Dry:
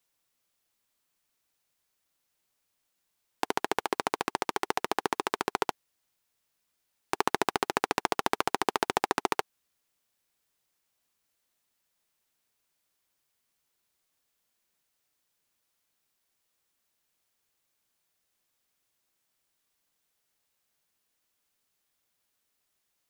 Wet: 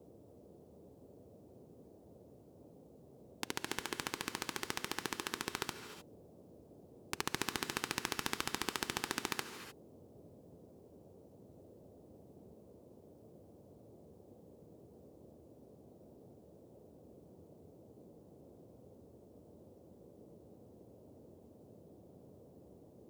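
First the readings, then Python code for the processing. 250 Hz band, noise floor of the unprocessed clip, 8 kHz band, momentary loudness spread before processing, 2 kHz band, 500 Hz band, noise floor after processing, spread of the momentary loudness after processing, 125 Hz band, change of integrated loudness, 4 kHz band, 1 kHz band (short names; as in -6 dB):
-7.0 dB, -79 dBFS, -2.0 dB, 4 LU, -7.0 dB, -12.5 dB, -61 dBFS, 22 LU, -1.0 dB, -9.0 dB, -3.5 dB, -14.0 dB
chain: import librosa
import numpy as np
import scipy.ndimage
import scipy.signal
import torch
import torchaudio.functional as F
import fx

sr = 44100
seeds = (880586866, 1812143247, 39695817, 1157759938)

y = fx.tone_stack(x, sr, knobs='6-0-2')
y = fx.dmg_noise_band(y, sr, seeds[0], low_hz=70.0, high_hz=550.0, level_db=-71.0)
y = fx.rev_gated(y, sr, seeds[1], gate_ms=330, shape='rising', drr_db=9.0)
y = F.gain(torch.from_numpy(y), 12.0).numpy()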